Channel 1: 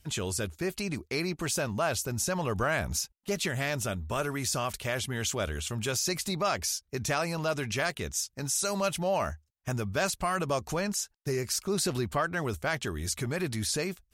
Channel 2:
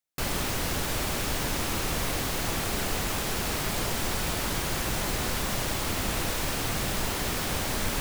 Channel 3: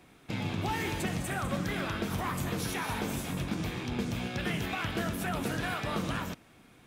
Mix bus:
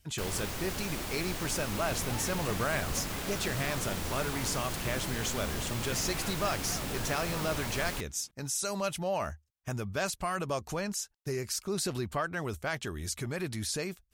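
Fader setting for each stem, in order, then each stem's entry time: -3.5 dB, -8.0 dB, -9.5 dB; 0.00 s, 0.00 s, 1.45 s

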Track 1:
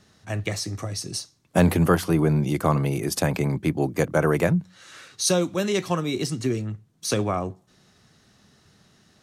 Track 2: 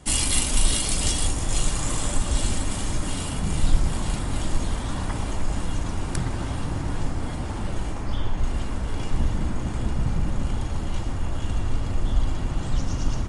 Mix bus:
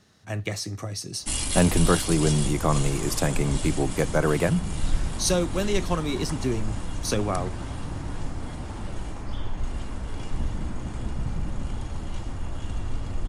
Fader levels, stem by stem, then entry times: -2.0 dB, -5.0 dB; 0.00 s, 1.20 s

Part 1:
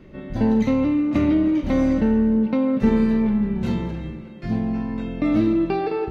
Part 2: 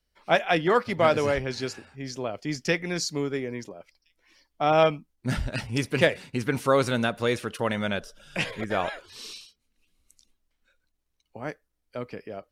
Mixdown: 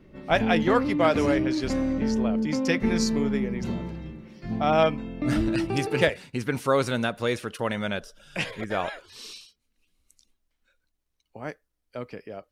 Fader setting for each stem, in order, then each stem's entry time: -7.0 dB, -1.0 dB; 0.00 s, 0.00 s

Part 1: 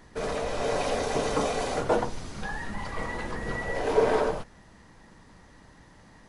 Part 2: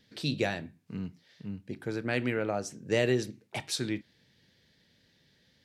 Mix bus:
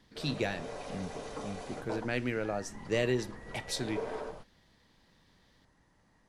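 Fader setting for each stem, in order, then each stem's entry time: -14.5 dB, -3.0 dB; 0.00 s, 0.00 s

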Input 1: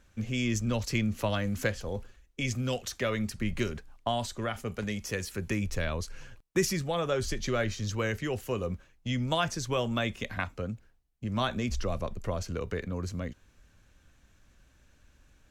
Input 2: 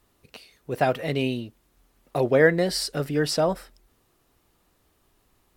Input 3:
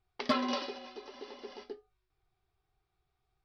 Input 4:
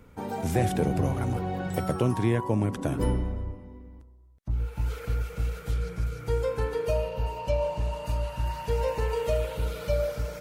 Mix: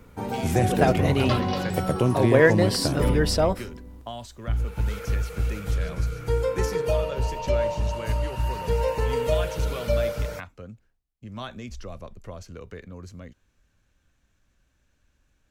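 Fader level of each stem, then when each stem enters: -6.5 dB, +0.5 dB, +2.0 dB, +3.0 dB; 0.00 s, 0.00 s, 1.00 s, 0.00 s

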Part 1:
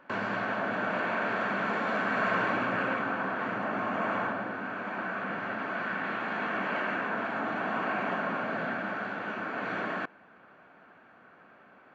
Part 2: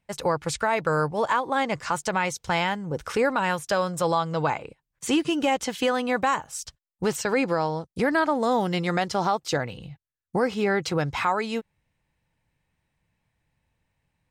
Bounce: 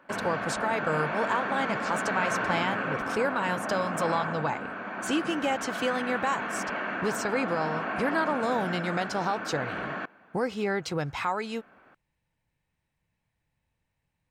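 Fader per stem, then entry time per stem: -1.0 dB, -5.0 dB; 0.00 s, 0.00 s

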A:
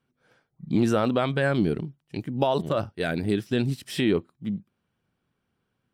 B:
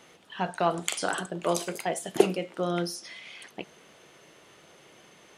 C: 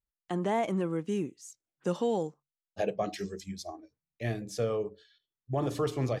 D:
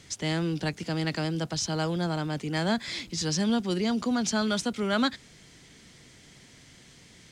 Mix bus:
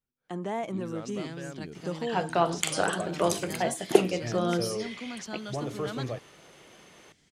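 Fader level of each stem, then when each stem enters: -18.5 dB, +1.0 dB, -3.5 dB, -12.5 dB; 0.00 s, 1.75 s, 0.00 s, 0.95 s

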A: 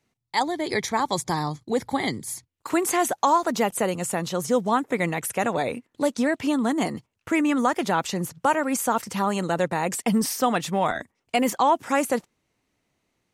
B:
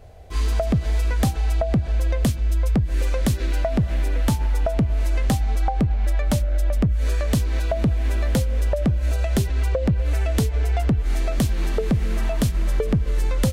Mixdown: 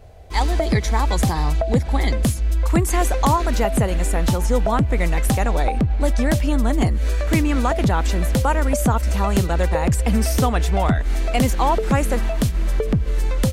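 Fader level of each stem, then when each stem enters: 0.0 dB, +1.0 dB; 0.00 s, 0.00 s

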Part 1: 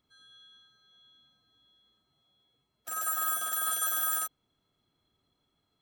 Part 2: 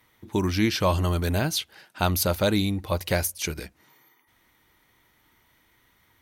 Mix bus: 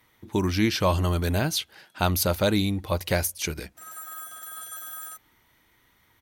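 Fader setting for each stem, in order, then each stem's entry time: -8.5 dB, 0.0 dB; 0.90 s, 0.00 s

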